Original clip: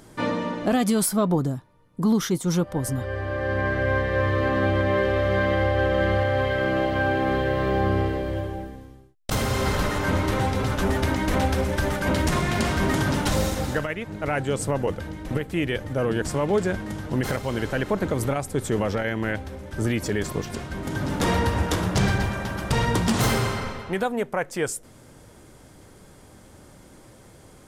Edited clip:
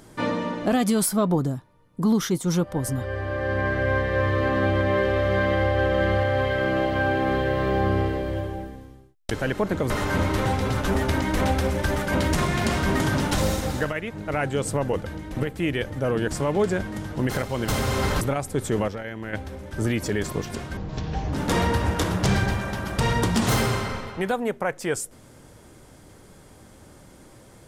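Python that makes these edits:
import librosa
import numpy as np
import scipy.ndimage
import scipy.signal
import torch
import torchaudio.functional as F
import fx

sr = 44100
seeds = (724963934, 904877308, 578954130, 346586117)

y = fx.edit(x, sr, fx.swap(start_s=9.31, length_s=0.53, other_s=17.62, other_length_s=0.59),
    fx.clip_gain(start_s=18.88, length_s=0.45, db=-7.5),
    fx.speed_span(start_s=20.77, length_s=0.28, speed=0.5), tone=tone)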